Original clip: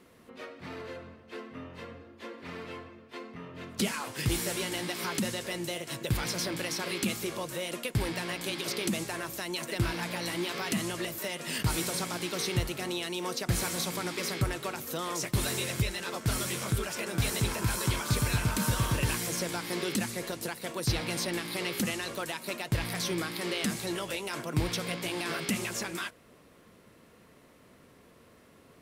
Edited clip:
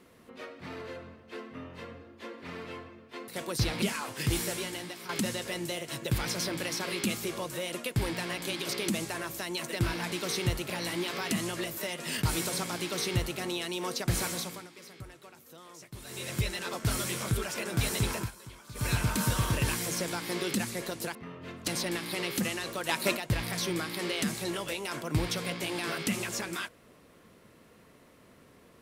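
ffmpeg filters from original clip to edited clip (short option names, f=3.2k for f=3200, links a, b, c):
-filter_complex "[0:a]asplit=14[a][b][c][d][e][f][g][h][i][j][k][l][m][n];[a]atrim=end=3.282[o];[b]atrim=start=20.558:end=21.102[p];[c]atrim=start=3.808:end=5.08,asetpts=PTS-STARTPTS,afade=t=out:st=0.582:d=0.69:silence=0.266073[q];[d]atrim=start=5.08:end=10.112,asetpts=PTS-STARTPTS,afade=t=in:d=0.004:c=hsin:silence=0.266073[r];[e]atrim=start=12.218:end=12.802[s];[f]atrim=start=10.108:end=14.09,asetpts=PTS-STARTPTS,afade=t=out:st=3.562:d=0.42:silence=0.149624[t];[g]atrim=start=14.09:end=15.45,asetpts=PTS-STARTPTS,volume=-16.5dB[u];[h]atrim=start=15.45:end=17.72,asetpts=PTS-STARTPTS,afade=t=in:d=0.42:silence=0.149624,afade=t=out:st=2.13:d=0.14:silence=0.11885[v];[i]atrim=start=17.72:end=18.15,asetpts=PTS-STARTPTS,volume=-18.5dB[w];[j]atrim=start=18.15:end=20.562,asetpts=PTS-STARTPTS,afade=t=in:d=0.14:silence=0.11885[x];[k]atrim=start=3.278:end=3.812[y];[l]atrim=start=21.098:end=22.312[z];[m]atrim=start=22.308:end=22.592,asetpts=PTS-STARTPTS,volume=8dB[aa];[n]atrim=start=22.588[ab];[o][p]acrossfade=d=0.004:c1=hsin:c2=hsin[ac];[q][r]concat=n=2:v=0:a=1[ad];[ac][ad]acrossfade=d=0.004:c1=hsin:c2=hsin[ae];[ae][s]acrossfade=d=0.004:c1=hsin:c2=hsin[af];[t][u][v][w][x]concat=n=5:v=0:a=1[ag];[af][ag]acrossfade=d=0.004:c1=hsin:c2=hsin[ah];[ah][y]acrossfade=d=0.004:c1=hsin:c2=hsin[ai];[ai][z]acrossfade=d=0.004:c1=hsin:c2=hsin[aj];[aj][aa]acrossfade=d=0.004:c1=hsin:c2=hsin[ak];[ak][ab]acrossfade=d=0.004:c1=hsin:c2=hsin"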